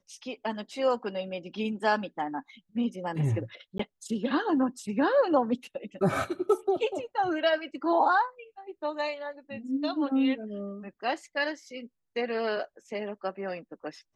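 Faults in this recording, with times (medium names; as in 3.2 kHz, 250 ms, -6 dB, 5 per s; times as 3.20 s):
3.78–3.79 s: dropout 14 ms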